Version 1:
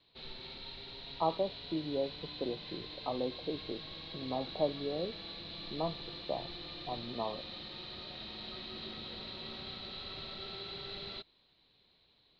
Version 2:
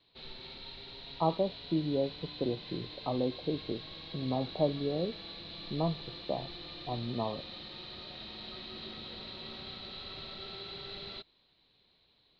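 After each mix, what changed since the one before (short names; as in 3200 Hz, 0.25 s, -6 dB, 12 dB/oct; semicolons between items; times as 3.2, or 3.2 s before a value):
speech: remove HPF 460 Hz 6 dB/oct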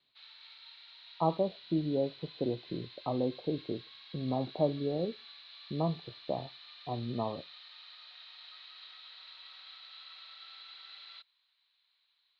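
background: add ladder high-pass 1000 Hz, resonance 25%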